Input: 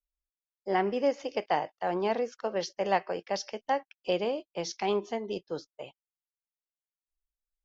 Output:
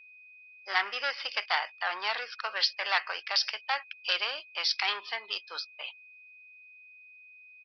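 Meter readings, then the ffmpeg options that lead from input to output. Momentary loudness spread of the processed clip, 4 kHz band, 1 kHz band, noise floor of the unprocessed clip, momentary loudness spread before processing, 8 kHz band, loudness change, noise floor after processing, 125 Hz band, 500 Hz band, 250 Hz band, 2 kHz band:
8 LU, +12.0 dB, -2.5 dB, under -85 dBFS, 9 LU, no reading, +1.0 dB, -54 dBFS, under -35 dB, -14.0 dB, under -25 dB, +9.5 dB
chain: -af "aresample=11025,asoftclip=type=tanh:threshold=0.075,aresample=44100,crystalizer=i=8.5:c=0,highpass=f=1300:t=q:w=2.1,aeval=exprs='val(0)+0.00282*sin(2*PI*2500*n/s)':c=same"

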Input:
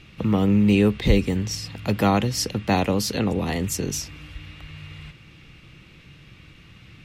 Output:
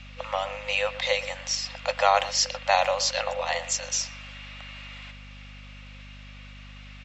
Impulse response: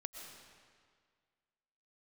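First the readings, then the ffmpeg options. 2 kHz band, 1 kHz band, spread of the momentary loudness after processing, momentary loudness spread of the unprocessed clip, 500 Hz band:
+3.0 dB, +3.0 dB, 23 LU, 22 LU, -2.0 dB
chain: -filter_complex "[0:a]afftfilt=real='re*between(b*sr/4096,500,7800)':imag='im*between(b*sr/4096,500,7800)':win_size=4096:overlap=0.75,asplit=2[s0][s1];[s1]adelay=120,highpass=300,lowpass=3400,asoftclip=type=hard:threshold=0.126,volume=0.2[s2];[s0][s2]amix=inputs=2:normalize=0,aeval=exprs='val(0)+0.00447*(sin(2*PI*50*n/s)+sin(2*PI*2*50*n/s)/2+sin(2*PI*3*50*n/s)/3+sin(2*PI*4*50*n/s)/4+sin(2*PI*5*50*n/s)/5)':c=same,volume=1.41"

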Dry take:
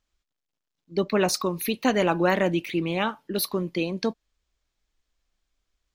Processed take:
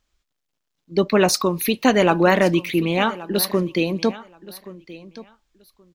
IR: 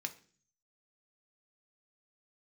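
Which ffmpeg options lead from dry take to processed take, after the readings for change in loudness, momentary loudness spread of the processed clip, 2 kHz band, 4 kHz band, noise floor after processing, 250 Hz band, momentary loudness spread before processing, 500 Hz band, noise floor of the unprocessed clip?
+6.0 dB, 22 LU, +6.0 dB, +6.0 dB, -78 dBFS, +6.0 dB, 7 LU, +6.0 dB, -84 dBFS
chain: -af "aecho=1:1:1126|2252:0.126|0.0214,volume=2"

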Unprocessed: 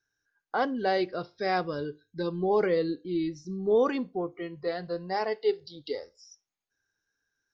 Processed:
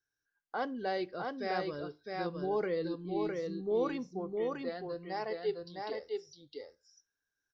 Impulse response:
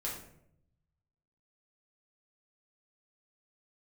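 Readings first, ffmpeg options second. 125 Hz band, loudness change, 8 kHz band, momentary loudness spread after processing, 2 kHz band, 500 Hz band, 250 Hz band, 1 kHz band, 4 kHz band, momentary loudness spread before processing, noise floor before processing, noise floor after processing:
-6.5 dB, -6.5 dB, no reading, 9 LU, -6.5 dB, -6.5 dB, -6.5 dB, -6.5 dB, -6.5 dB, 12 LU, -85 dBFS, under -85 dBFS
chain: -af "aecho=1:1:659:0.668,volume=0.398"

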